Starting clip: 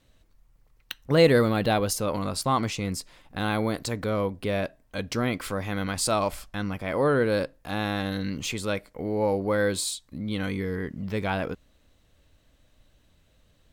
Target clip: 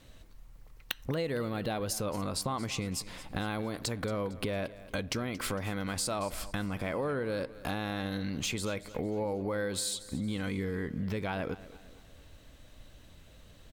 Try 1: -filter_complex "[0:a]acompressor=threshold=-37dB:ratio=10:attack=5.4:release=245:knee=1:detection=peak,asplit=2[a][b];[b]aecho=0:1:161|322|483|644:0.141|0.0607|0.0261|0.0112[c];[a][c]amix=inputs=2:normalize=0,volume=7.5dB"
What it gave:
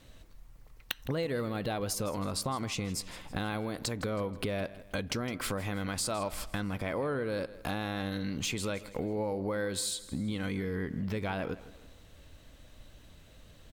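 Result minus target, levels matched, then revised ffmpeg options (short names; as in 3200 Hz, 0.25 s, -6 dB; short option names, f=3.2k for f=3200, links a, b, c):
echo 67 ms early
-filter_complex "[0:a]acompressor=threshold=-37dB:ratio=10:attack=5.4:release=245:knee=1:detection=peak,asplit=2[a][b];[b]aecho=0:1:228|456|684|912:0.141|0.0607|0.0261|0.0112[c];[a][c]amix=inputs=2:normalize=0,volume=7.5dB"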